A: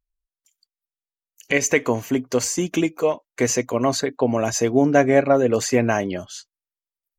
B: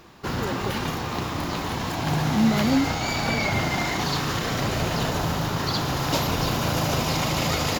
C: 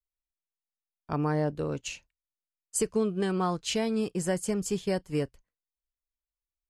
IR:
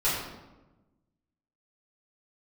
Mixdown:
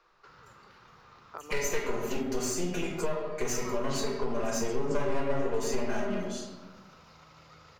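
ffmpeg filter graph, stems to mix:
-filter_complex "[0:a]aecho=1:1:4.9:0.89,aeval=exprs='clip(val(0),-1,0.0944)':channel_layout=same,volume=-15dB,asplit=2[link_01][link_02];[link_02]volume=-4.5dB[link_03];[1:a]acrossover=split=240|870[link_04][link_05][link_06];[link_04]acompressor=threshold=-36dB:ratio=4[link_07];[link_05]acompressor=threshold=-49dB:ratio=4[link_08];[link_06]acompressor=threshold=-44dB:ratio=4[link_09];[link_07][link_08][link_09]amix=inputs=3:normalize=0,volume=-16.5dB,asplit=2[link_10][link_11];[link_11]volume=-22.5dB[link_12];[2:a]acompressor=threshold=-34dB:ratio=6,adelay=250,volume=1dB[link_13];[link_10][link_13]amix=inputs=2:normalize=0,highpass=frequency=410:width=0.5412,highpass=frequency=410:width=1.3066,equalizer=frequency=480:width_type=q:width=4:gain=4,equalizer=frequency=720:width_type=q:width=4:gain=-4,equalizer=frequency=1300:width_type=q:width=4:gain=10,equalizer=frequency=3200:width_type=q:width=4:gain=-4,lowpass=frequency=6200:width=0.5412,lowpass=frequency=6200:width=1.3066,acompressor=threshold=-39dB:ratio=6,volume=0dB[link_14];[3:a]atrim=start_sample=2205[link_15];[link_03][link_12]amix=inputs=2:normalize=0[link_16];[link_16][link_15]afir=irnorm=-1:irlink=0[link_17];[link_01][link_14][link_17]amix=inputs=3:normalize=0,acompressor=threshold=-28dB:ratio=2"

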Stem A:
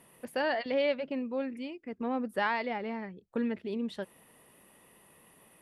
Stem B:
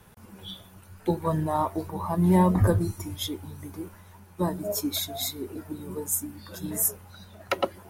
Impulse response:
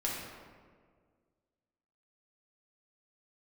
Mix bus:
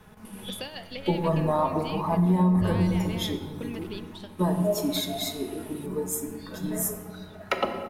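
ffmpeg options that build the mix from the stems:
-filter_complex "[0:a]highshelf=frequency=2200:width_type=q:width=1.5:gain=11,acompressor=threshold=-36dB:ratio=4,adelay=250,volume=0dB,asplit=2[link_01][link_02];[link_02]volume=-18dB[link_03];[1:a]highshelf=frequency=5600:gain=-9.5,aecho=1:1:4.7:0.41,volume=-1.5dB,asplit=3[link_04][link_05][link_06];[link_05]volume=-5dB[link_07];[link_06]apad=whole_len=258489[link_08];[link_01][link_08]sidechaingate=range=-33dB:threshold=-50dB:ratio=16:detection=peak[link_09];[2:a]atrim=start_sample=2205[link_10];[link_03][link_07]amix=inputs=2:normalize=0[link_11];[link_11][link_10]afir=irnorm=-1:irlink=0[link_12];[link_09][link_04][link_12]amix=inputs=3:normalize=0,acompressor=threshold=-19dB:ratio=6"

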